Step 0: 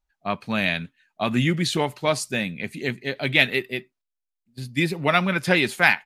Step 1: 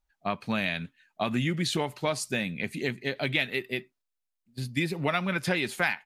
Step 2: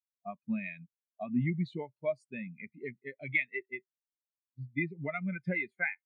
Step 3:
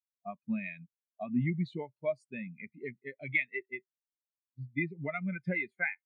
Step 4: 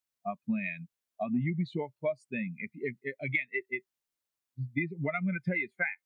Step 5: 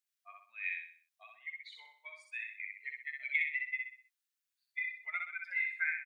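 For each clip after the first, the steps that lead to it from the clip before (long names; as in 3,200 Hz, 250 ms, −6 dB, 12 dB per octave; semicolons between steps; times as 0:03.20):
downward compressor 3 to 1, threshold −26 dBFS, peak gain reduction 11 dB
dynamic equaliser 2,100 Hz, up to +7 dB, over −46 dBFS, Q 4.1; every bin expanded away from the loudest bin 2.5 to 1; level −9 dB
no processing that can be heard
downward compressor 5 to 1, threshold −34 dBFS, peak gain reduction 9.5 dB; level +6.5 dB
inverse Chebyshev high-pass filter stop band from 320 Hz, stop band 70 dB; repeating echo 63 ms, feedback 40%, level −3 dB; level −2 dB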